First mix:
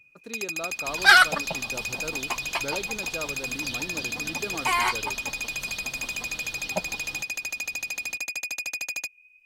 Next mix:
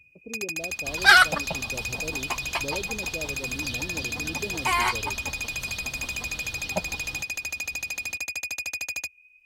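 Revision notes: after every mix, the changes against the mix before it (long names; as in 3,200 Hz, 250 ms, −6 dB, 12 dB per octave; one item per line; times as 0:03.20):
speech: add inverse Chebyshev low-pass filter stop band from 1,300 Hz, stop band 40 dB
master: add parametric band 73 Hz +13 dB 1.1 octaves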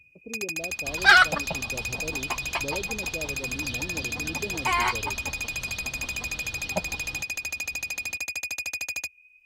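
second sound: add high-frequency loss of the air 76 metres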